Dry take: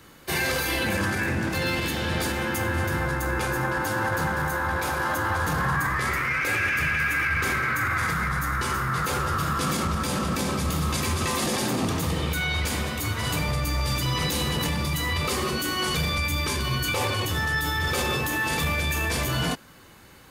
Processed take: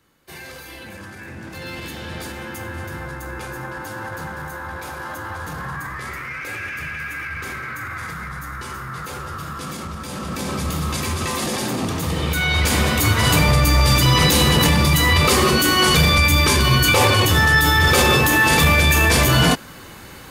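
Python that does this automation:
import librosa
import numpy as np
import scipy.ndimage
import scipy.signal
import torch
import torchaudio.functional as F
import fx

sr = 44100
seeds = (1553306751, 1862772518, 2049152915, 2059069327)

y = fx.gain(x, sr, db=fx.line((1.13, -12.0), (1.83, -5.0), (10.03, -5.0), (10.57, 2.0), (11.96, 2.0), (12.92, 11.0)))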